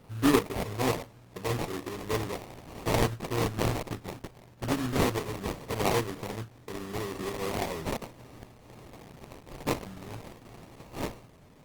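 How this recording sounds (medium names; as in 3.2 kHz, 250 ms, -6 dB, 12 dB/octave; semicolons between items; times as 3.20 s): a buzz of ramps at a fixed pitch in blocks of 16 samples; phasing stages 4, 0.18 Hz, lowest notch 480–3200 Hz; aliases and images of a low sample rate 1.5 kHz, jitter 20%; Opus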